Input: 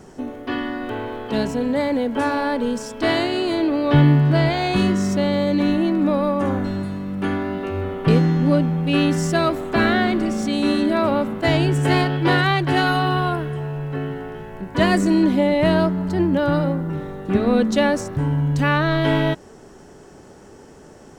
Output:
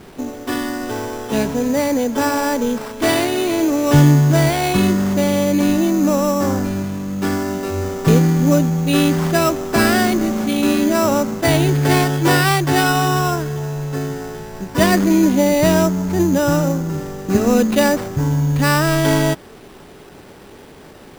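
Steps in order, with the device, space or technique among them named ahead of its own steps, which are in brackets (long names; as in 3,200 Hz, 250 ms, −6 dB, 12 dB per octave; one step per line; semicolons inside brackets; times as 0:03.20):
early 8-bit sampler (sample-rate reduction 6,600 Hz, jitter 0%; bit reduction 8 bits)
level +3 dB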